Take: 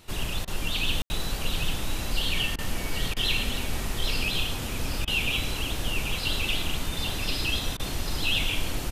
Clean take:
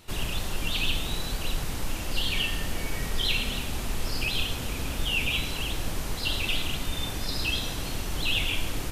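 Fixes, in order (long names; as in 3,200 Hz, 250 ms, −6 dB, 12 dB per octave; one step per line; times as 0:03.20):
ambience match 0:01.02–0:01.10
repair the gap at 0:00.45/0:02.56/0:03.14/0:05.05/0:07.77, 24 ms
echo removal 790 ms −5.5 dB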